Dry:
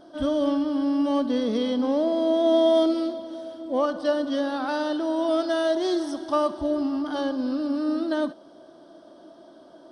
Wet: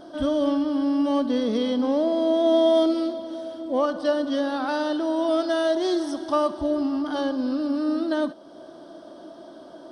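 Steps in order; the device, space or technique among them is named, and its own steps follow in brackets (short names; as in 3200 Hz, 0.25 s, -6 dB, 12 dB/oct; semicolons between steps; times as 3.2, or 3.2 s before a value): parallel compression (in parallel at -0.5 dB: compressor, threshold -42 dBFS, peak gain reduction 23.5 dB)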